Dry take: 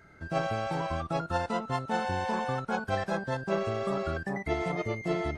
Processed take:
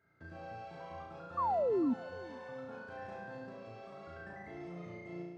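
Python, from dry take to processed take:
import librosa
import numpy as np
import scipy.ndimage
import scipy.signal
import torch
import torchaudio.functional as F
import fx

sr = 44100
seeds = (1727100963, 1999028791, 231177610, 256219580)

p1 = fx.fade_out_tail(x, sr, length_s=1.03)
p2 = scipy.signal.sosfilt(scipy.signal.butter(2, 95.0, 'highpass', fs=sr, output='sos'), p1)
p3 = fx.high_shelf(p2, sr, hz=3500.0, db=9.5)
p4 = fx.hum_notches(p3, sr, base_hz=50, count=4)
p5 = fx.level_steps(p4, sr, step_db=24)
p6 = p5 + fx.room_flutter(p5, sr, wall_m=5.9, rt60_s=1.1, dry=0)
p7 = fx.spec_paint(p6, sr, seeds[0], shape='fall', start_s=1.37, length_s=0.57, low_hz=230.0, high_hz=1200.0, level_db=-28.0)
p8 = fx.spacing_loss(p7, sr, db_at_10k=23)
p9 = p8 + 10.0 ** (-21.5 / 20.0) * np.pad(p8, (int(450 * sr / 1000.0), 0))[:len(p8)]
y = F.gain(torch.from_numpy(p9), -1.5).numpy()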